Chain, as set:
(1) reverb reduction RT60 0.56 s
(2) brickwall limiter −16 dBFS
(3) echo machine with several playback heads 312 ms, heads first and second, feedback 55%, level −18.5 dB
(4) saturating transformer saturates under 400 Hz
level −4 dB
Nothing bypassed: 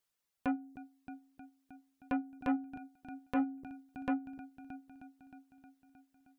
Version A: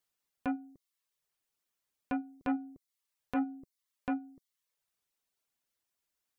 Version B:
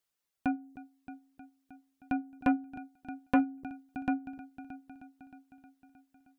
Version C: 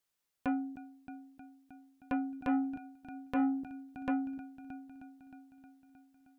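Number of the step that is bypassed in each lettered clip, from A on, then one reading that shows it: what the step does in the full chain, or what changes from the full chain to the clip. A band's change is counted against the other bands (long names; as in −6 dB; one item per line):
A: 3, change in momentary loudness spread −6 LU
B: 2, change in crest factor +4.0 dB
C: 1, 250 Hz band +2.0 dB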